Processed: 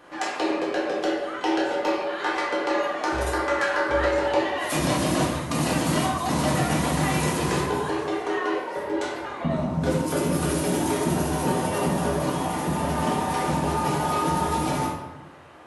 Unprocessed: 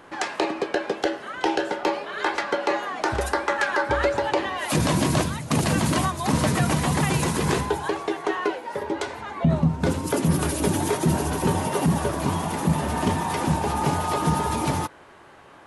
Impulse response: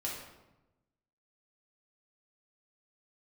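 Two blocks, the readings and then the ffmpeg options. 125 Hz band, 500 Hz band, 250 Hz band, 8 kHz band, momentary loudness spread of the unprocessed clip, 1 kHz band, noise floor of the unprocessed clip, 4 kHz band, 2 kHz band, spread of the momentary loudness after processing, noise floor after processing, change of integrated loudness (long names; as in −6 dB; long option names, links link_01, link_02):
−3.5 dB, +1.0 dB, −0.5 dB, −1.0 dB, 5 LU, 0.0 dB, −48 dBFS, −0.5 dB, −0.5 dB, 4 LU, −36 dBFS, −0.5 dB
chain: -filter_complex "[0:a]lowshelf=frequency=140:gain=-7,asplit=2[link_01][link_02];[link_02]asoftclip=type=tanh:threshold=-23.5dB,volume=-11dB[link_03];[link_01][link_03]amix=inputs=2:normalize=0[link_04];[1:a]atrim=start_sample=2205[link_05];[link_04][link_05]afir=irnorm=-1:irlink=0,volume=-3.5dB"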